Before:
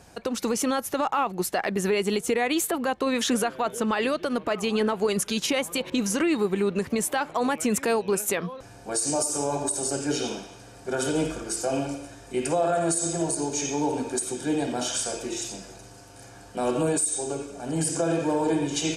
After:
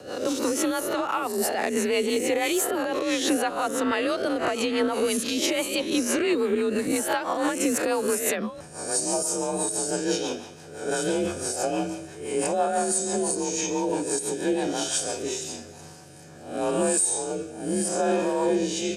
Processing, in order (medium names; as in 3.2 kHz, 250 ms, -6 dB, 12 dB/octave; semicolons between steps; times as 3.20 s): reverse spectral sustain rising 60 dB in 0.66 s; in parallel at +1 dB: peak limiter -16.5 dBFS, peak gain reduction 9 dB; on the sum: rotary cabinet horn 6 Hz, later 0.8 Hz, at 15.11 s; frequency shift +40 Hz; trim -5 dB